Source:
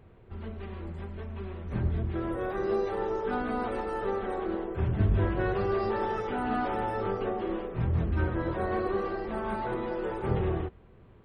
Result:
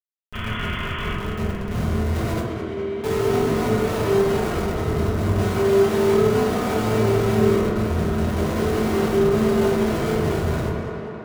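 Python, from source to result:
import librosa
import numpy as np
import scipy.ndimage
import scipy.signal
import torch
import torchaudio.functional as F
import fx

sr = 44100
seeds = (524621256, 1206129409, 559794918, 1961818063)

y = fx.schmitt(x, sr, flips_db=-32.5)
y = fx.spec_paint(y, sr, seeds[0], shape='noise', start_s=0.33, length_s=0.8, low_hz=930.0, high_hz=3500.0, level_db=-37.0)
y = fx.vowel_filter(y, sr, vowel='i', at=(2.4, 3.04))
y = fx.echo_tape(y, sr, ms=204, feedback_pct=84, wet_db=-6.5, lp_hz=4100.0, drive_db=19.0, wow_cents=37)
y = fx.rev_fdn(y, sr, rt60_s=0.84, lf_ratio=1.55, hf_ratio=0.35, size_ms=14.0, drr_db=-5.5)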